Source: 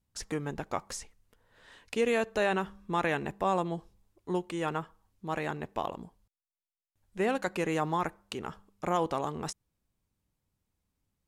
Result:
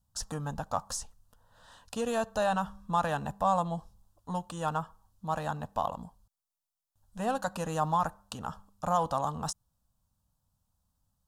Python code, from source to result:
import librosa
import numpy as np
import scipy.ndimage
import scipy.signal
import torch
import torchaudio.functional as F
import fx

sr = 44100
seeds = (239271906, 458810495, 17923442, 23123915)

p1 = 10.0 ** (-31.5 / 20.0) * np.tanh(x / 10.0 ** (-31.5 / 20.0))
p2 = x + (p1 * librosa.db_to_amplitude(-8.0))
p3 = fx.fixed_phaser(p2, sr, hz=900.0, stages=4)
y = p3 * librosa.db_to_amplitude(2.5)